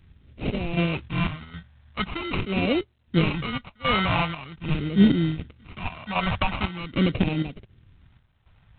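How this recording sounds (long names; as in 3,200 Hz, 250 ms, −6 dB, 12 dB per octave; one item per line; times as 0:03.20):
chopped level 1.3 Hz, depth 65%, duty 65%
aliases and images of a low sample rate 1,700 Hz, jitter 0%
phaser sweep stages 2, 0.44 Hz, lowest notch 340–1,000 Hz
G.726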